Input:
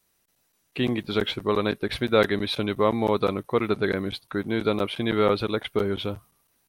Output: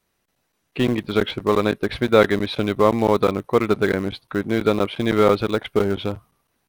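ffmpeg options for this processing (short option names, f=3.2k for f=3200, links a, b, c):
-filter_complex "[0:a]highshelf=f=4.6k:g=-11.5,asplit=2[a][b];[b]aeval=exprs='val(0)*gte(abs(val(0)),0.0841)':c=same,volume=-10dB[c];[a][c]amix=inputs=2:normalize=0,volume=3.5dB"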